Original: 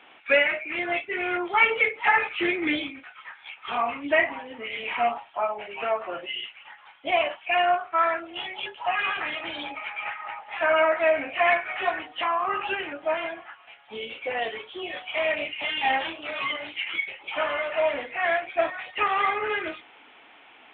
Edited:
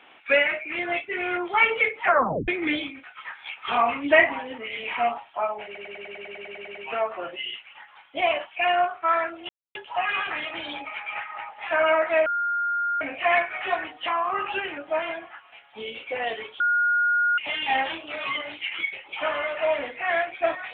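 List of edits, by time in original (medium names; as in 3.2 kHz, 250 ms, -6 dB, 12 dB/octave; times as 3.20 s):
2.02 s: tape stop 0.46 s
3.17–4.58 s: gain +4.5 dB
5.65 s: stutter 0.10 s, 12 plays
8.39–8.65 s: mute
11.16 s: add tone 1.41 kHz -22.5 dBFS 0.75 s
14.75–15.53 s: bleep 1.43 kHz -18.5 dBFS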